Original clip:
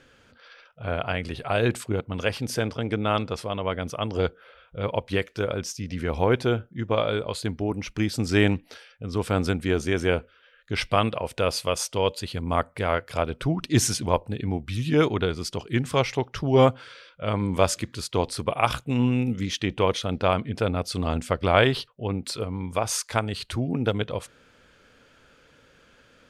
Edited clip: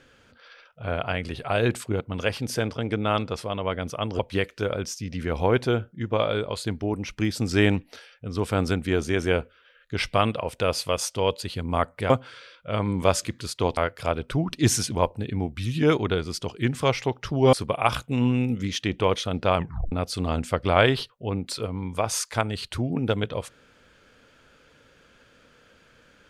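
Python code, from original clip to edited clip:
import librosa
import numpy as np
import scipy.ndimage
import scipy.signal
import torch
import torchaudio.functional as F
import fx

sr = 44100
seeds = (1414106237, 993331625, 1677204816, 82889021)

y = fx.edit(x, sr, fx.cut(start_s=4.19, length_s=0.78),
    fx.move(start_s=16.64, length_s=1.67, to_s=12.88),
    fx.tape_stop(start_s=20.34, length_s=0.36), tone=tone)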